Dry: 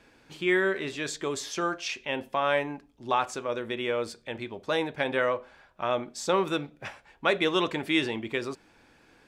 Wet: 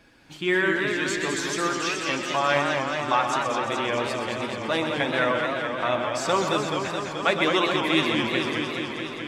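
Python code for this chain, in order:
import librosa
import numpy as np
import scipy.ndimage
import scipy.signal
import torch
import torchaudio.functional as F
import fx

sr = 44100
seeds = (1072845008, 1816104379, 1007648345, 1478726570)

p1 = fx.spec_quant(x, sr, step_db=15)
p2 = fx.peak_eq(p1, sr, hz=440.0, db=-7.5, octaves=0.42)
p3 = p2 + fx.echo_single(p2, sr, ms=126, db=-8.0, dry=0)
p4 = fx.echo_warbled(p3, sr, ms=214, feedback_pct=78, rate_hz=2.8, cents=161, wet_db=-5)
y = p4 * librosa.db_to_amplitude(3.5)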